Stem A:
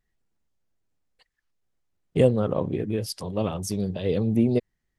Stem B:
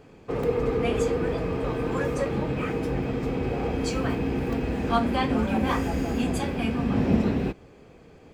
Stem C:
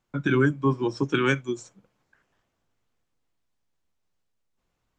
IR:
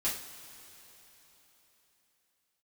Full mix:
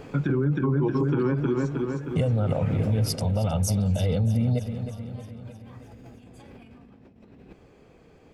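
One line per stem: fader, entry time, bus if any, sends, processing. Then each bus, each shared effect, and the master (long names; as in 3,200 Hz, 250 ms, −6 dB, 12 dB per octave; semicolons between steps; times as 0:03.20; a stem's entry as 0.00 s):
+1.0 dB, 0.00 s, no send, echo send −12.5 dB, parametric band 100 Hz +8 dB 0.97 octaves; comb filter 1.4 ms, depth 94%; downward compressor, threshold −17 dBFS, peak gain reduction 8.5 dB
0:02.98 −1 dB → 0:03.29 −13.5 dB, 0.00 s, no send, no echo send, compressor whose output falls as the input rises −36 dBFS, ratio −1; automatic ducking −8 dB, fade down 0.60 s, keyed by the third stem
+3.0 dB, 0.00 s, no send, echo send −5.5 dB, treble cut that deepens with the level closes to 770 Hz, closed at −20 dBFS; parametric band 150 Hz +9 dB 0.23 octaves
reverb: not used
echo: repeating echo 312 ms, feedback 59%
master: brickwall limiter −16 dBFS, peak gain reduction 8.5 dB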